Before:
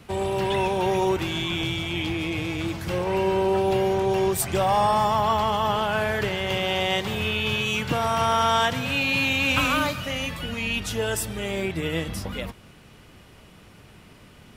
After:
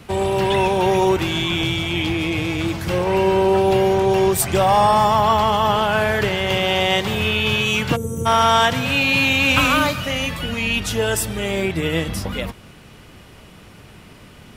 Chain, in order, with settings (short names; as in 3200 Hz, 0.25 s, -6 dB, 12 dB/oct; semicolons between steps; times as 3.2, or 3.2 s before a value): spectral gain 7.96–8.26, 540–5900 Hz -30 dB; gain +6 dB